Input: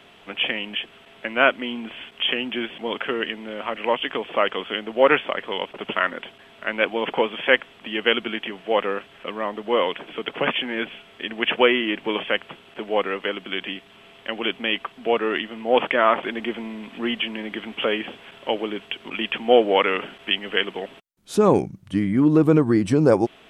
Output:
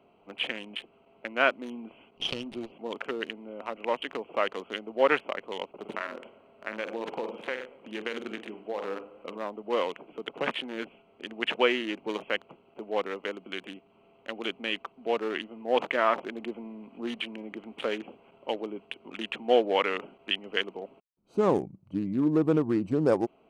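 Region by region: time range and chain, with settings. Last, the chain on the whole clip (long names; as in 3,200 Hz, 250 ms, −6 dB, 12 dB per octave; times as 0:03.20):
0:02.17–0:02.72: lower of the sound and its delayed copy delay 0.3 ms + low-pass filter 6,100 Hz
0:05.73–0:09.38: flutter between parallel walls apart 8.1 metres, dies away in 0.35 s + downward compressor, threshold −20 dBFS + feedback echo with a swinging delay time 116 ms, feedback 61%, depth 84 cents, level −16.5 dB
whole clip: adaptive Wiener filter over 25 samples; low-shelf EQ 130 Hz −9.5 dB; level −6 dB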